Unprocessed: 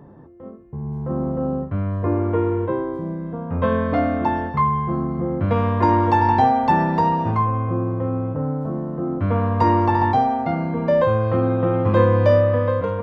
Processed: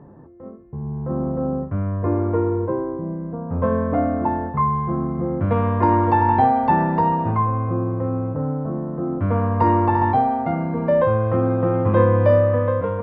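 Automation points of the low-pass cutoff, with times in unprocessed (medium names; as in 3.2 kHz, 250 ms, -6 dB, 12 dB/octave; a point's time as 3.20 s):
2.16 s 1.9 kHz
2.58 s 1.2 kHz
4.45 s 1.2 kHz
5.03 s 2.1 kHz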